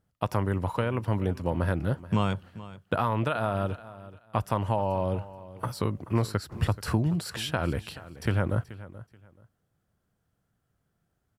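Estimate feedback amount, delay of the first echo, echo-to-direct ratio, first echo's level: 23%, 430 ms, −17.0 dB, −17.0 dB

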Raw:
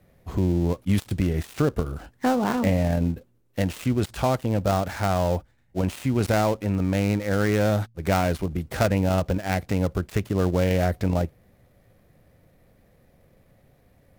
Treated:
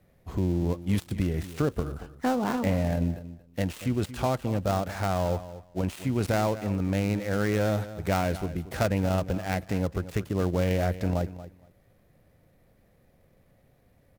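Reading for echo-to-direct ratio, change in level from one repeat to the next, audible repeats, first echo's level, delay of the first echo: −14.5 dB, −16.0 dB, 2, −14.5 dB, 232 ms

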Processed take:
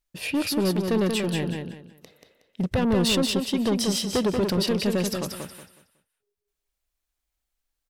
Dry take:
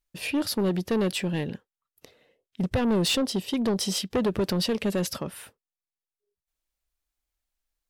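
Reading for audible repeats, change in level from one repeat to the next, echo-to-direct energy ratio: 3, −11.5 dB, −4.5 dB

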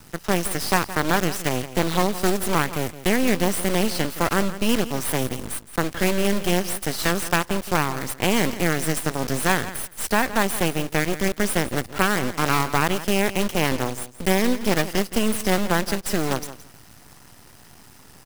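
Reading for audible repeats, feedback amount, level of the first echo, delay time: 2, 16%, −14.5 dB, 168 ms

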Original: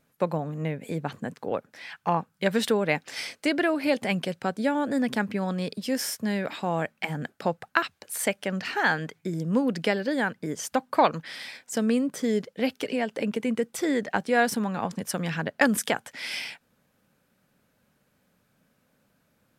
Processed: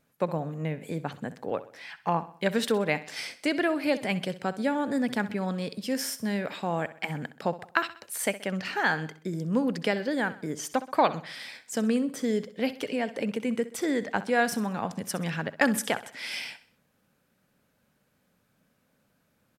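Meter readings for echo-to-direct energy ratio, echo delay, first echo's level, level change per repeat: −14.5 dB, 64 ms, −15.5 dB, −7.0 dB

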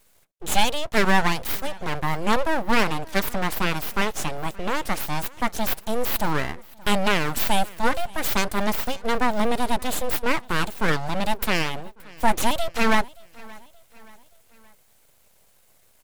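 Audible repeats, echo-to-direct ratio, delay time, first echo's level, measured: 2, −22.5 dB, 575 ms, −23.5 dB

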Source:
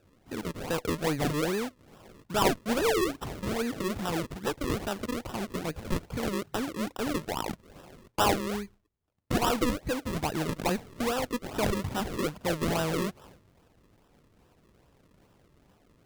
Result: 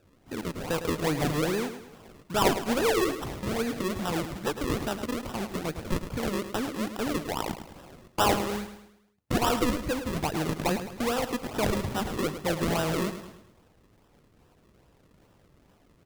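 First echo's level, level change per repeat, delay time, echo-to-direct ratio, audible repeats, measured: −10.5 dB, −7.0 dB, 106 ms, −9.5 dB, 4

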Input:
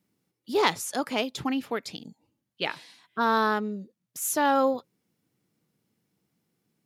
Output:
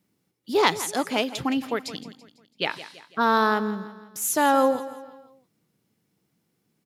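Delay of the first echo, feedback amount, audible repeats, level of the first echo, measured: 166 ms, 46%, 3, −15.0 dB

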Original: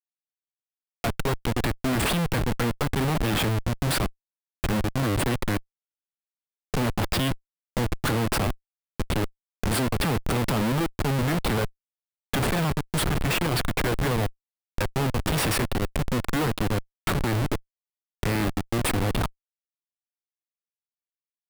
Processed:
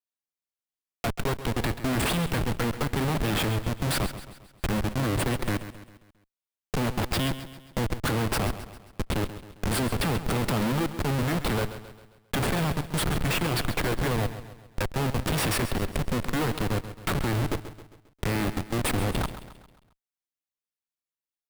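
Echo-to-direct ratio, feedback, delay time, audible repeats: −11.5 dB, 48%, 134 ms, 4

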